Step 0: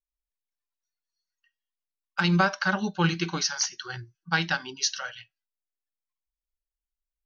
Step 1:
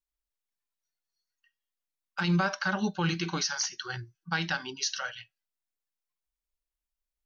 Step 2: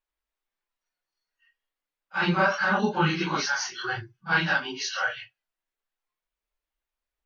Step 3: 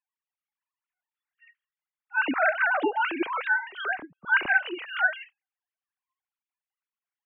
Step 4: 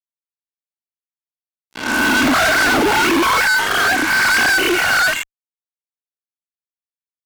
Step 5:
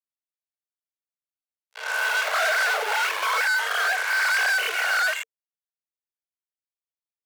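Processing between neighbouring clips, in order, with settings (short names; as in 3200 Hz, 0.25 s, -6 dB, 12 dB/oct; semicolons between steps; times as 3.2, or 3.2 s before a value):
limiter -18.5 dBFS, peak gain reduction 7 dB
phase scrambler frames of 0.1 s; tone controls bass -8 dB, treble -13 dB; gain +8 dB
sine-wave speech
spectral swells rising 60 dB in 1.05 s; small resonant body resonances 240/1100/2200 Hz, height 9 dB, ringing for 40 ms; fuzz box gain 38 dB, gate -37 dBFS
rippled Chebyshev high-pass 440 Hz, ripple 3 dB; gain -7 dB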